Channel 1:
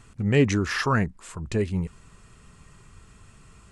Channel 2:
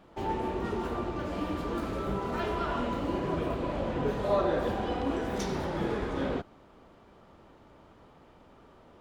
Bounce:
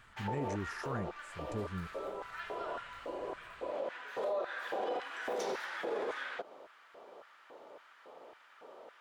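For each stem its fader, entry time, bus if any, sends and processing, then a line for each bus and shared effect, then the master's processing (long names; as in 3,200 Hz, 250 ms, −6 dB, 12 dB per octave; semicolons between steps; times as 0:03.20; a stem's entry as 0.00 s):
−14.0 dB, 0.00 s, no send, parametric band 3,300 Hz −15 dB 0.94 octaves
+1.0 dB, 0.00 s, no send, downward compressor, threshold −32 dBFS, peak gain reduction 10 dB; auto-filter high-pass square 1.8 Hz 510–1,600 Hz; automatic ducking −7 dB, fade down 1.20 s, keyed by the first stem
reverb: not used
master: brickwall limiter −27.5 dBFS, peak gain reduction 8.5 dB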